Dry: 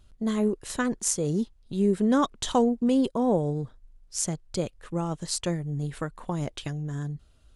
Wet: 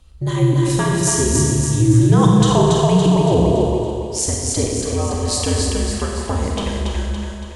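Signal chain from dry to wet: band-stop 1.5 kHz, Q 11; two-band feedback delay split 490 Hz, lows 150 ms, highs 282 ms, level -3 dB; Schroeder reverb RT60 1.5 s, combs from 31 ms, DRR 0 dB; frequency shift -82 Hz; in parallel at -2 dB: peak limiter -13.5 dBFS, peak gain reduction 7 dB; on the sum: trim +2 dB

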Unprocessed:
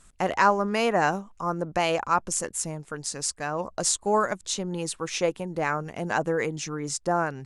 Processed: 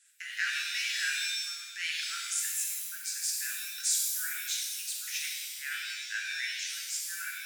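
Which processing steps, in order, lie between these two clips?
steep high-pass 1.5 kHz 96 dB/octave; pitch-shifted reverb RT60 1.2 s, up +7 st, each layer -2 dB, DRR -1.5 dB; trim -6 dB

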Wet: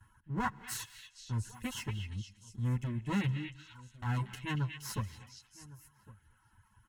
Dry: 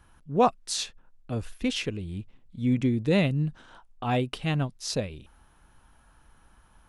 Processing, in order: comb filter that takes the minimum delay 9.2 ms; FFT filter 110 Hz 0 dB, 670 Hz -25 dB, 1 kHz -3 dB, 4.6 kHz -17 dB, 6.6 kHz -9 dB; in parallel at -1.5 dB: compression, threshold -36 dBFS, peak gain reduction 10 dB; on the sum: comb of notches 1.2 kHz; echo from a far wall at 190 m, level -19 dB; reverb removal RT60 1 s; repeats whose band climbs or falls 234 ms, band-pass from 2.7 kHz, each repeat 0.7 oct, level -4 dB; on a send at -19 dB: reverberation, pre-delay 3 ms

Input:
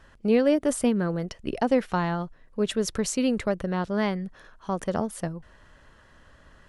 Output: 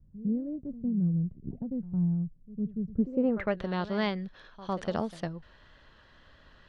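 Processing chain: reverse echo 106 ms -15.5 dB; wow and flutter 23 cents; low-pass sweep 160 Hz -> 4 kHz, 2.90–3.60 s; trim -4 dB

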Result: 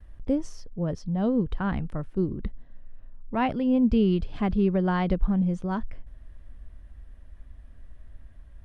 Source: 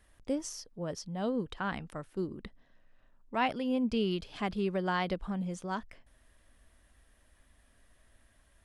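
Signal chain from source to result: gate with hold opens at -60 dBFS; RIAA curve playback; trim +2.5 dB

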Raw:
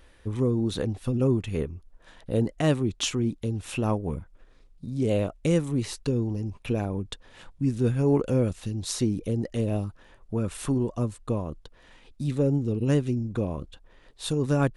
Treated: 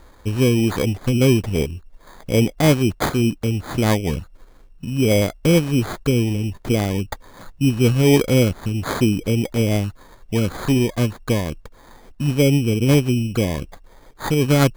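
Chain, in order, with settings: sample-and-hold 16×; trim +8 dB

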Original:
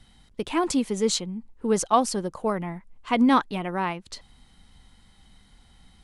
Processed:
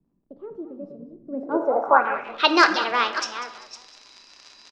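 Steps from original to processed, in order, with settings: chunks repeated in reverse 372 ms, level -11.5 dB; frequency-shifting echo 250 ms, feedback 34%, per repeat -90 Hz, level -14 dB; crackle 55 per s -36 dBFS; in parallel at -11.5 dB: integer overflow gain 9 dB; on the sum: reverberation RT60 1.1 s, pre-delay 6 ms, DRR 7.5 dB; low-pass sweep 140 Hz -> 4.3 kHz, 1.61–3.28 s; bass shelf 110 Hz -10 dB; tape speed +28%; three-band isolator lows -22 dB, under 370 Hz, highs -16 dB, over 7.7 kHz; trim +3.5 dB

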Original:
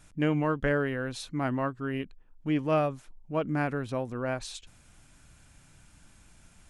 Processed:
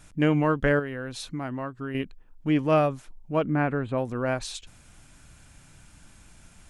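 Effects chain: 0.79–1.95 s: compression 3:1, threshold -36 dBFS, peak gain reduction 9 dB; 3.46–3.98 s: boxcar filter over 8 samples; trim +4.5 dB

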